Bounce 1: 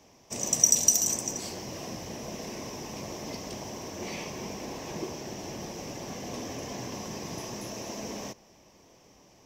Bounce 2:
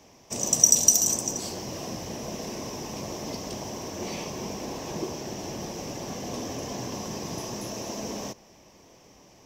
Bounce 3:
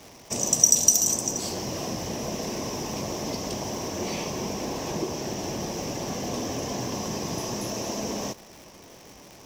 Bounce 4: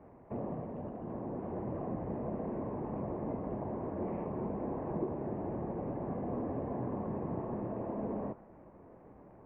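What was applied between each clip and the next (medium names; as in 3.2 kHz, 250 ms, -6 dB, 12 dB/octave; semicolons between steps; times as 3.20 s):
dynamic bell 2.1 kHz, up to -6 dB, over -52 dBFS, Q 1.9; trim +3.5 dB
in parallel at +1 dB: compression, threshold -35 dBFS, peak gain reduction 22 dB; on the sum: crackle 280 per s -36 dBFS; trim -1 dB
flange 2 Hz, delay 3.2 ms, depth 9.7 ms, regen -85%; Gaussian low-pass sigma 6.6 samples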